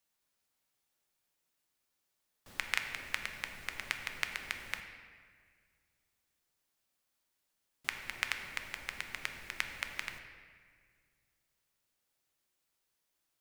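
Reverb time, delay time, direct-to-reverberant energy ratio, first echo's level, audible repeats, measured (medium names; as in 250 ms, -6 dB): 1.8 s, no echo, 5.0 dB, no echo, no echo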